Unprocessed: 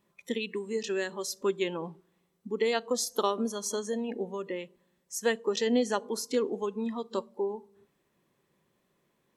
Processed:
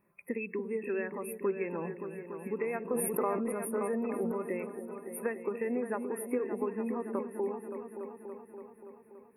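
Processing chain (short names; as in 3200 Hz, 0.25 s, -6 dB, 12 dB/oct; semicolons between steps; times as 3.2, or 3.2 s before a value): compressor, threshold -30 dBFS, peak gain reduction 9 dB; brick-wall FIR band-stop 2700–8800 Hz; repeats that get brighter 0.286 s, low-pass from 400 Hz, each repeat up 2 oct, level -6 dB; 2.82–4.32 sustainer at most 22 dB/s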